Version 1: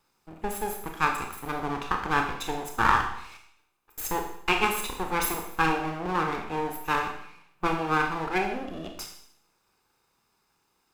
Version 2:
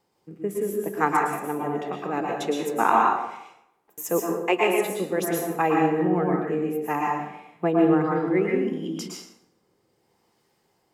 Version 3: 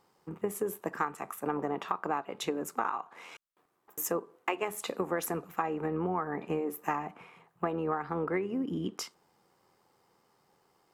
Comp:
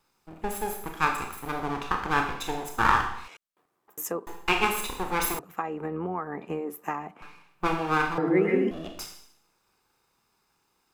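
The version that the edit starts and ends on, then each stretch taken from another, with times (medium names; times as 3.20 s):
1
3.28–4.27 s: from 3
5.39–7.22 s: from 3
8.18–8.71 s: from 2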